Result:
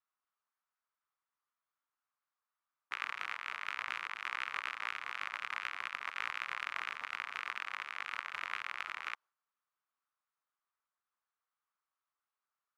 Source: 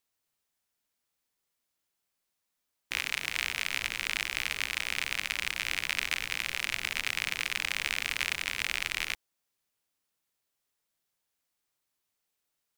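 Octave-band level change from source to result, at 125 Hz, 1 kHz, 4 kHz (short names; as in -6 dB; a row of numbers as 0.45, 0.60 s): under -20 dB, +2.5 dB, -14.0 dB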